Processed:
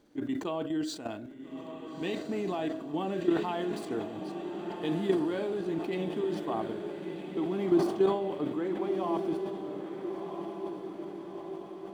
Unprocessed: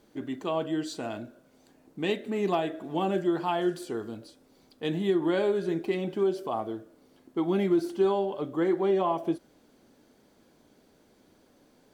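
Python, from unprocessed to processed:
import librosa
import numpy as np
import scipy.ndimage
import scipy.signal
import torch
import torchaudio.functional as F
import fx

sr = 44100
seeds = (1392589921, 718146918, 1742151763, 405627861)

y = scipy.signal.medfilt(x, 3)
y = fx.level_steps(y, sr, step_db=11)
y = fx.peak_eq(y, sr, hz=290.0, db=6.5, octaves=0.27)
y = fx.echo_diffused(y, sr, ms=1344, feedback_pct=59, wet_db=-7.0)
y = fx.sustainer(y, sr, db_per_s=77.0)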